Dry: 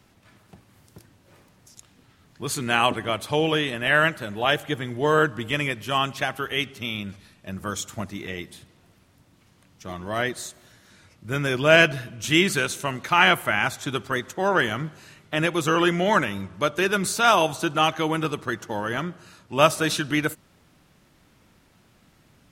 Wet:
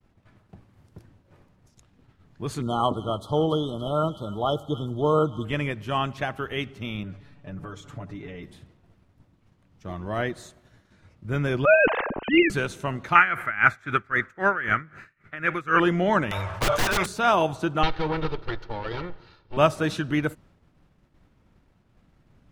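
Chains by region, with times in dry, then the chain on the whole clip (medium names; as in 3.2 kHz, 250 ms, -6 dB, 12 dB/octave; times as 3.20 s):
2.62–5.45 s: brick-wall FIR band-stop 1.4–3 kHz + feedback echo behind a high-pass 283 ms, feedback 48%, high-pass 1.8 kHz, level -10.5 dB
7.03–8.43 s: low-pass 3.5 kHz 6 dB/octave + comb 7 ms, depth 93% + compression 4:1, threshold -34 dBFS
11.65–12.50 s: formants replaced by sine waves + level-controlled noise filter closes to 1.1 kHz, open at -12 dBFS + spectrum-flattening compressor 2:1
13.15–15.80 s: high-order bell 1.7 kHz +15 dB 1.2 oct + logarithmic tremolo 3.8 Hz, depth 19 dB
16.31–17.06 s: FFT filter 130 Hz 0 dB, 220 Hz -21 dB, 640 Hz +12 dB + integer overflow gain 12.5 dB + decay stretcher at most 42 dB/s
17.83–19.57 s: comb filter that takes the minimum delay 2.2 ms + resonant high shelf 6 kHz -12 dB, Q 3
whole clip: tilt EQ -4 dB/octave; expander -42 dBFS; bass shelf 400 Hz -9.5 dB; trim -1 dB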